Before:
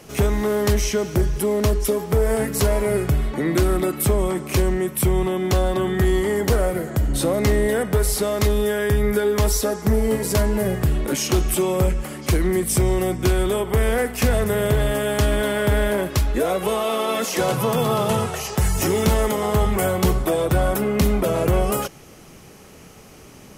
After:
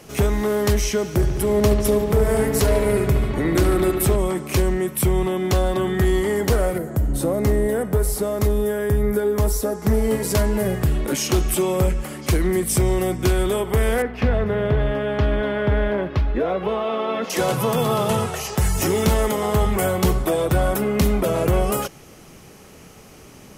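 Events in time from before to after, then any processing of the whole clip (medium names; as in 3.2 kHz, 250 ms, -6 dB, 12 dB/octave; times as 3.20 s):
1.13–4.16 s: bucket-brigade echo 72 ms, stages 2048, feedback 82%, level -9 dB
6.78–9.82 s: peaking EQ 3.4 kHz -10 dB 2.4 oct
14.02–17.30 s: distance through air 310 m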